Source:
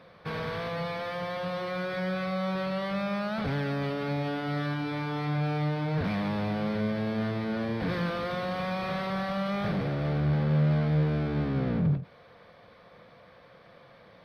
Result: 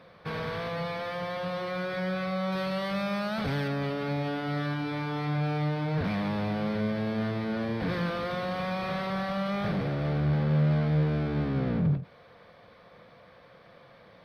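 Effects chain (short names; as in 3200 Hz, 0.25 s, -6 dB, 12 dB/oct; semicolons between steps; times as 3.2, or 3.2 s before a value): 2.52–3.68 high shelf 4400 Hz +8 dB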